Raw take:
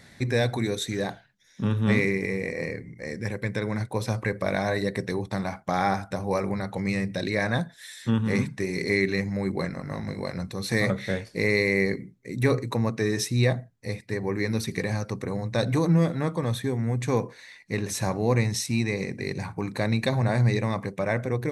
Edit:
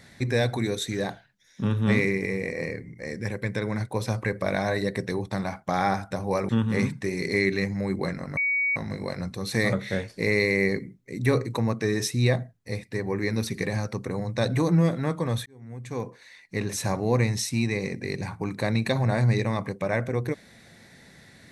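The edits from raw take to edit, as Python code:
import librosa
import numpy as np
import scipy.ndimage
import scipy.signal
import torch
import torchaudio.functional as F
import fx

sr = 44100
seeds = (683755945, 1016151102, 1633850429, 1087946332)

y = fx.edit(x, sr, fx.cut(start_s=6.49, length_s=1.56),
    fx.insert_tone(at_s=9.93, length_s=0.39, hz=2250.0, db=-21.5),
    fx.fade_in_span(start_s=16.63, length_s=1.19), tone=tone)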